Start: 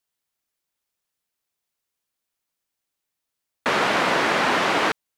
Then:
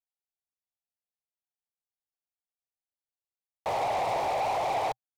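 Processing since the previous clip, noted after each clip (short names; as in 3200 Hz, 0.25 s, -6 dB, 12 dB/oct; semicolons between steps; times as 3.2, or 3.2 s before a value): EQ curve 120 Hz 0 dB, 220 Hz -26 dB, 780 Hz +4 dB, 1500 Hz -27 dB, 2900 Hz -17 dB, 12000 Hz -8 dB; sample leveller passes 3; gain -9 dB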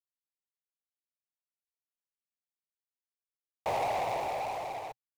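median filter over 25 samples; high shelf 8300 Hz +5.5 dB; tremolo saw down 0.57 Hz, depth 95%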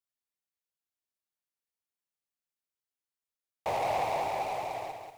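lo-fi delay 0.186 s, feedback 35%, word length 10-bit, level -5 dB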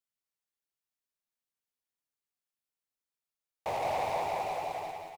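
feedback echo 0.174 s, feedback 47%, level -7 dB; gain -2.5 dB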